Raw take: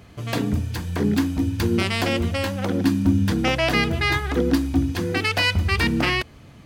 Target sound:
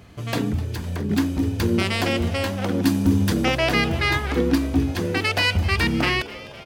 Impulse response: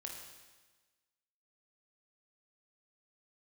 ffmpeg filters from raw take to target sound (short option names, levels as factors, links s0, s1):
-filter_complex "[0:a]asettb=1/sr,asplit=3[s0][s1][s2];[s0]atrim=end=0.524[s3];[s1]atrim=start=0.52:end=1.11,asetpts=PTS-STARTPTS,afade=t=in:d=0.004:c=qsin,afade=t=out:st=0.586:d=0.004:c=qsin,acrossover=split=140[s4][s5];[s5]acompressor=threshold=0.0251:ratio=3[s6];[s4][s6]amix=inputs=2:normalize=0[s7];[s2]atrim=start=1.106[s8];[s3][s7]acrossfade=d=0.004:c1=hsin:c2=qsin[s9];[s9][s8]acrossfade=d=0.004:c1=qsin:c2=hsin,asettb=1/sr,asplit=3[s10][s11][s12];[s10]atrim=end=2.834[s13];[s11]atrim=start=2.83:end=3.45,asetpts=PTS-STARTPTS,afade=t=in:d=0.004:c=qsin,afade=t=out:st=0.616:d=0.004:c=qsin,highshelf=f=4900:g=7.5[s14];[s12]atrim=start=3.446[s15];[s13][s14]acrossfade=d=0.004:c1=hsin:c2=qsin[s16];[s16][s15]acrossfade=d=0.004:c1=qsin:c2=hsin,asplit=7[s17][s18][s19][s20][s21][s22][s23];[s18]adelay=254,afreqshift=150,volume=0.133[s24];[s19]adelay=508,afreqshift=300,volume=0.0804[s25];[s20]adelay=762,afreqshift=450,volume=0.0479[s26];[s21]adelay=1016,afreqshift=600,volume=0.0288[s27];[s22]adelay=1270,afreqshift=750,volume=0.0174[s28];[s23]adelay=1524,afreqshift=900,volume=0.0104[s29];[s17][s24][s25][s26][s27][s28][s29]amix=inputs=7:normalize=0"